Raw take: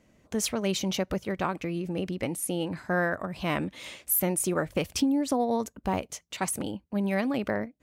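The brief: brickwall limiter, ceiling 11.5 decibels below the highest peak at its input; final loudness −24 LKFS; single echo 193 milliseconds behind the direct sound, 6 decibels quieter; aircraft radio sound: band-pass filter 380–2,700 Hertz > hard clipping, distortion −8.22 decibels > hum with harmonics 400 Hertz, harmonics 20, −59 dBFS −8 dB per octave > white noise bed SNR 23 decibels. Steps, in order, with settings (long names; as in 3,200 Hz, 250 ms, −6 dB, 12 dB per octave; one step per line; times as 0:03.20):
brickwall limiter −26 dBFS
band-pass filter 380–2,700 Hz
single-tap delay 193 ms −6 dB
hard clipping −37.5 dBFS
hum with harmonics 400 Hz, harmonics 20, −59 dBFS −8 dB per octave
white noise bed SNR 23 dB
level +18.5 dB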